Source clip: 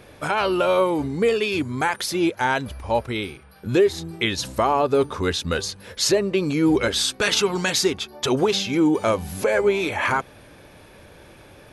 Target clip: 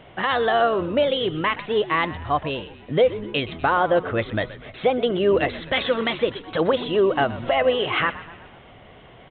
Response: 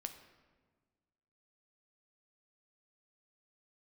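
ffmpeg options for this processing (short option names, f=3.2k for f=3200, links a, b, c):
-filter_complex "[0:a]asetrate=55566,aresample=44100,asplit=6[a][b][c][d][e][f];[b]adelay=123,afreqshift=-80,volume=-16dB[g];[c]adelay=246,afreqshift=-160,volume=-21.4dB[h];[d]adelay=369,afreqshift=-240,volume=-26.7dB[i];[e]adelay=492,afreqshift=-320,volume=-32.1dB[j];[f]adelay=615,afreqshift=-400,volume=-37.4dB[k];[a][g][h][i][j][k]amix=inputs=6:normalize=0,aresample=8000,aresample=44100"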